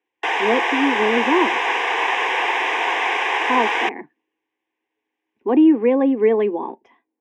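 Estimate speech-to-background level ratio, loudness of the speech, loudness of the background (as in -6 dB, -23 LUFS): 0.0 dB, -19.5 LUFS, -19.5 LUFS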